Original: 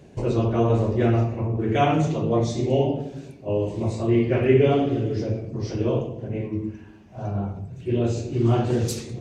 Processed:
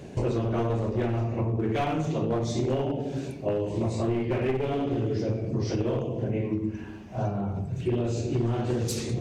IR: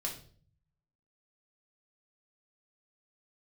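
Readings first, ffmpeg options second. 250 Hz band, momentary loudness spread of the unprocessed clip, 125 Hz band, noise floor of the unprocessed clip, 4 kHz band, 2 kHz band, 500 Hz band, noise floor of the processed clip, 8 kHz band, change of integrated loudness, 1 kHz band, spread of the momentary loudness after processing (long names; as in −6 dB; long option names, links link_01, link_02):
−4.5 dB, 11 LU, −4.5 dB, −46 dBFS, −3.5 dB, −5.0 dB, −5.5 dB, −39 dBFS, can't be measured, −5.0 dB, −5.5 dB, 4 LU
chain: -af "aeval=exprs='clip(val(0),-1,0.106)':channel_layout=same,acompressor=threshold=-30dB:ratio=10,bandreject=frequency=50:width_type=h:width=6,bandreject=frequency=100:width_type=h:width=6,bandreject=frequency=150:width_type=h:width=6,volume=6.5dB"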